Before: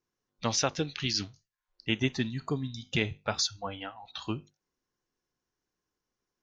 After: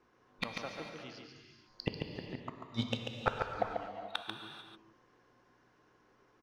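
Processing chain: LPF 2000 Hz 6 dB/oct; 1.18–3.48 compressor 5:1, threshold -44 dBFS, peak gain reduction 18.5 dB; sample leveller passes 1; flipped gate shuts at -35 dBFS, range -38 dB; hum 60 Hz, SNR 33 dB; overdrive pedal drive 17 dB, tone 1500 Hz, clips at -26.5 dBFS; echo 0.141 s -5 dB; non-linear reverb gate 0.47 s flat, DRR 4.5 dB; gain +14.5 dB

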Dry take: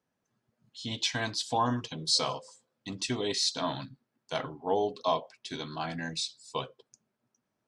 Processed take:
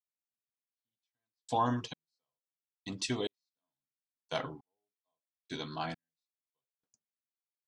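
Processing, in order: expander -50 dBFS; step gate ".xxx....." 101 bpm -60 dB; gain -2 dB

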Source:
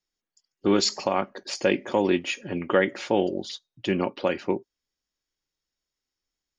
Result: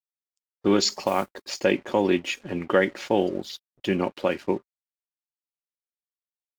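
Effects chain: 1.03–1.57 modulation noise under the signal 23 dB; crossover distortion -48 dBFS; gain +1 dB; Vorbis 96 kbps 44100 Hz

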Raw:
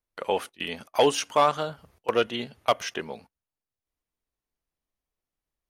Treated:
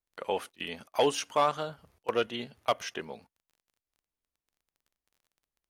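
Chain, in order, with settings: crackle 22/s -49 dBFS; gain -5 dB

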